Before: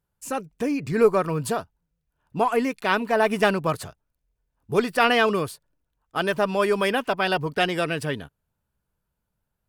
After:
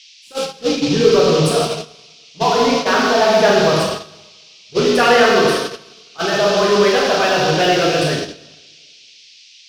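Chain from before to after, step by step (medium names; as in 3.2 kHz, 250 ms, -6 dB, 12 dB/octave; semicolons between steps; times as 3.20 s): resonances exaggerated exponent 1.5; plate-style reverb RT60 1.9 s, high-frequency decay 0.75×, DRR -5 dB; in parallel at -12 dB: fuzz box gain 26 dB, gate -32 dBFS; on the sum: band noise 2.4–5.8 kHz -26 dBFS; gate -17 dBFS, range -19 dB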